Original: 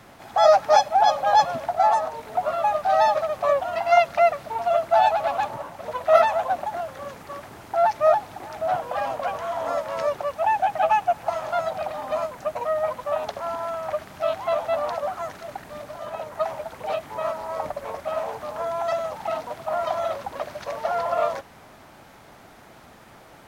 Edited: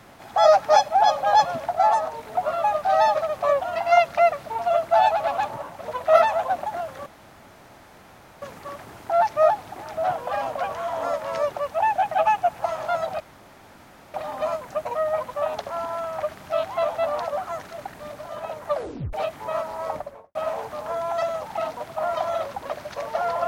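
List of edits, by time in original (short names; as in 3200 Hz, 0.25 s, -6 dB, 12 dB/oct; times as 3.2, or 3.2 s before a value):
7.06 insert room tone 1.36 s
11.84 insert room tone 0.94 s
16.39 tape stop 0.44 s
17.58–18.05 studio fade out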